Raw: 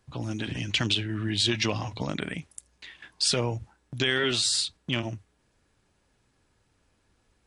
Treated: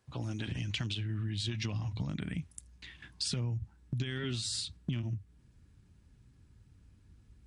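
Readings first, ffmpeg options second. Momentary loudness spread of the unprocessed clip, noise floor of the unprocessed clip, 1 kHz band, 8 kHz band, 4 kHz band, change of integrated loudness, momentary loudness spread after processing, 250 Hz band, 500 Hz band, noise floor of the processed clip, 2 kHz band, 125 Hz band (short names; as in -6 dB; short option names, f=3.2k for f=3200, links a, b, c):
20 LU, -70 dBFS, -15.0 dB, -11.0 dB, -12.0 dB, -9.0 dB, 8 LU, -7.5 dB, -14.5 dB, -63 dBFS, -13.5 dB, -1.5 dB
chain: -af "highpass=44,asubboost=boost=10:cutoff=190,acompressor=threshold=-28dB:ratio=6,volume=-4.5dB"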